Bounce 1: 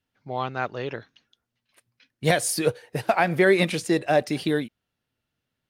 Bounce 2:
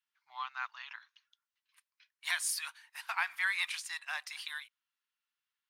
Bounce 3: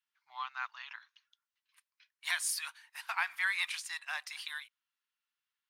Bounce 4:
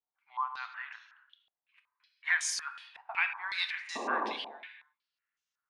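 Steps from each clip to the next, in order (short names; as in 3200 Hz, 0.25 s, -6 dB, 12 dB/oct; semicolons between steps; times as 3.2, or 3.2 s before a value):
elliptic high-pass 990 Hz, stop band 50 dB; gain -6.5 dB
nothing audible
painted sound noise, 3.95–4.33, 210–1200 Hz -34 dBFS; non-linear reverb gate 0.36 s falling, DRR 7 dB; stepped low-pass 5.4 Hz 750–6300 Hz; gain -3.5 dB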